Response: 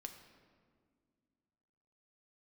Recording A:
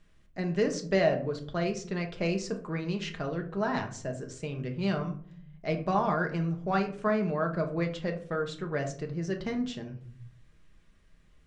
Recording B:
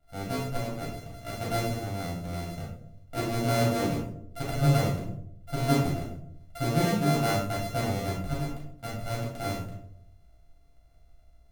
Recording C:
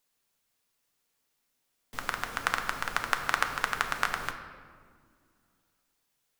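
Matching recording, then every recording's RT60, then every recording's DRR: C; 0.55, 0.70, 2.0 s; 3.0, -5.5, 4.5 dB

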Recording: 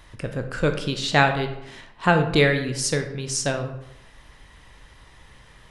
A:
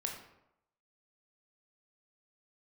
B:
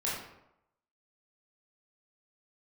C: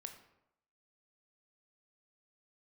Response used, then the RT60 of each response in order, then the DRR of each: C; 0.85, 0.85, 0.85 s; 1.0, -7.0, 5.5 dB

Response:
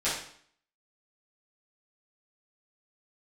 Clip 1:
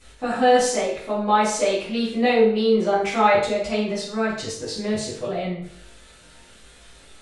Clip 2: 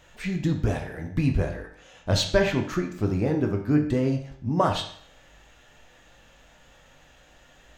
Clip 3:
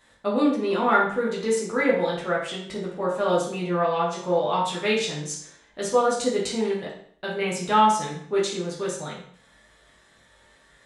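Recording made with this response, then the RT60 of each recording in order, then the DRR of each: 1; 0.60, 0.60, 0.60 s; -12.0, 2.0, -6.0 dB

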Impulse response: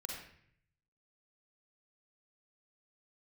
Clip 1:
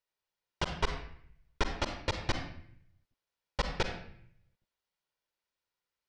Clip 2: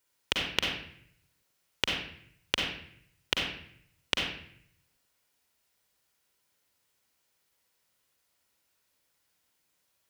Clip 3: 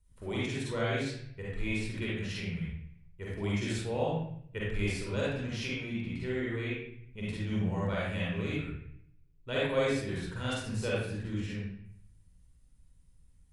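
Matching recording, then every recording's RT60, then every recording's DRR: 2; 0.65, 0.60, 0.60 s; 5.0, -1.0, -7.0 dB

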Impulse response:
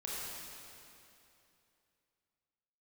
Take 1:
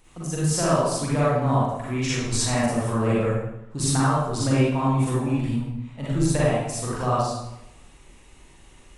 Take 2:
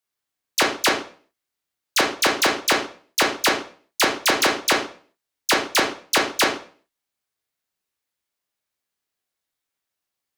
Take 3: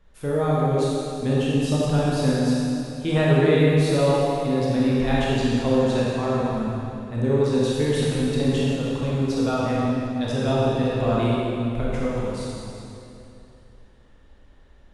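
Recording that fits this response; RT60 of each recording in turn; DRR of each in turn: 3; 0.85, 0.45, 2.8 s; -8.0, 0.0, -7.0 dB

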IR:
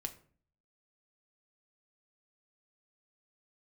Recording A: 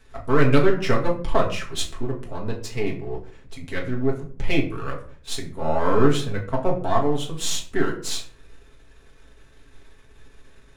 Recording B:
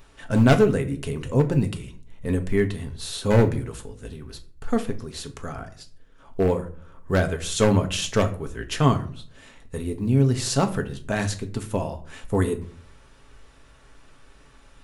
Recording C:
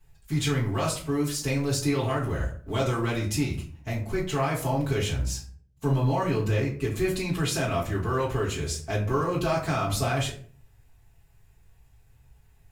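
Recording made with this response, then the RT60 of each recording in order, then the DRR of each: B; 0.45, 0.45, 0.45 s; -2.0, 6.0, -8.5 dB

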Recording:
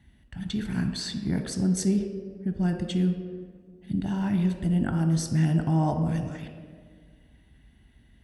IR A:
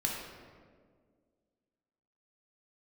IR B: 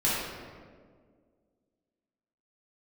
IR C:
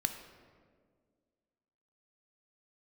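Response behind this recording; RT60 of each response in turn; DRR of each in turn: C; 1.8, 1.8, 1.8 s; -3.0, -10.0, 5.5 dB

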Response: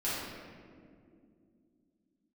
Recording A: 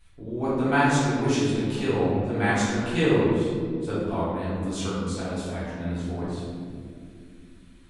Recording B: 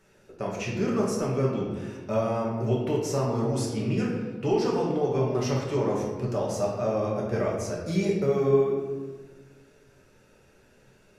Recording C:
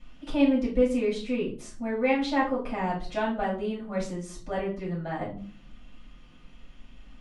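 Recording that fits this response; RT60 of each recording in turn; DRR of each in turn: A; 2.4, 1.4, 0.45 s; -11.0, -4.0, -7.0 dB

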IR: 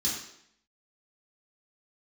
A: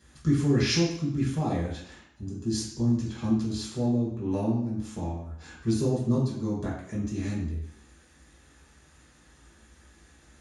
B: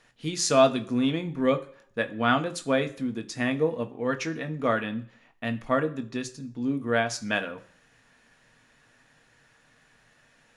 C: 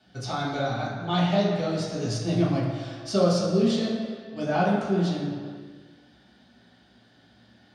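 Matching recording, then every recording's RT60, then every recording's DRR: A; 0.70 s, not exponential, 2.0 s; -7.5, 6.5, -9.0 dB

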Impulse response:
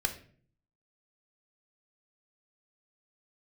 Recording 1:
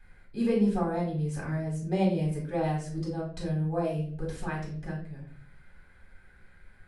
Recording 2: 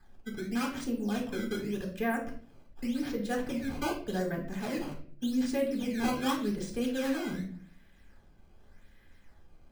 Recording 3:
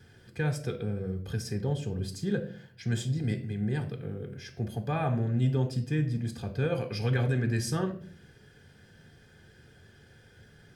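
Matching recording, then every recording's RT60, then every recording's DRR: 3; 0.50, 0.50, 0.50 s; -4.5, 0.5, 6.5 dB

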